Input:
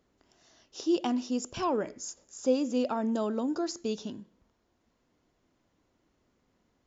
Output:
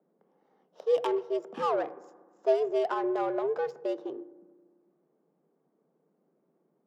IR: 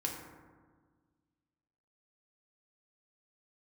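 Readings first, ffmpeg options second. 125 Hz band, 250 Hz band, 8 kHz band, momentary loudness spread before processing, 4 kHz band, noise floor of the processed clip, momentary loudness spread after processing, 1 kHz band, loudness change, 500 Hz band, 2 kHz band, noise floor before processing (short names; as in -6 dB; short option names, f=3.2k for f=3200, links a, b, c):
under -10 dB, -8.0 dB, n/a, 13 LU, -6.5 dB, -74 dBFS, 11 LU, +3.0 dB, +1.0 dB, +4.5 dB, +2.5 dB, -74 dBFS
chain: -filter_complex "[0:a]adynamicsmooth=sensitivity=4.5:basefreq=810,afreqshift=140,asplit=2[a][b];[1:a]atrim=start_sample=2205,lowpass=4.2k[c];[b][c]afir=irnorm=-1:irlink=0,volume=-16dB[d];[a][d]amix=inputs=2:normalize=0"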